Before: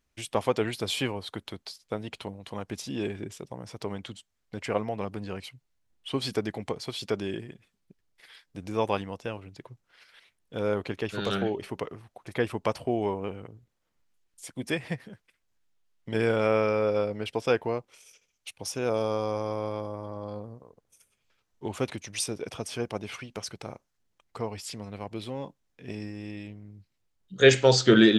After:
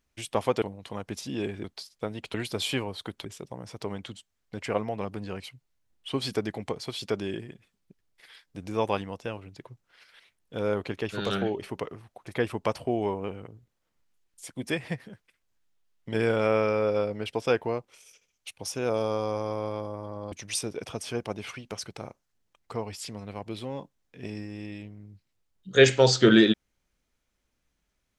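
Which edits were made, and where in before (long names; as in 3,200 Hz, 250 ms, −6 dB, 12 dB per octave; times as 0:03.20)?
0:00.62–0:01.53: swap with 0:02.23–0:03.25
0:20.32–0:21.97: remove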